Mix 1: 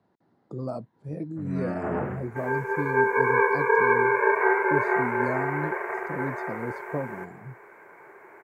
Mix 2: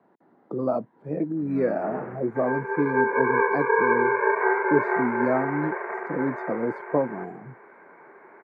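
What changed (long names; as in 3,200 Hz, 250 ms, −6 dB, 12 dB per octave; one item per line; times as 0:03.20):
speech +9.0 dB
first sound −3.0 dB
master: add three-way crossover with the lows and the highs turned down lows −20 dB, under 190 Hz, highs −22 dB, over 2,500 Hz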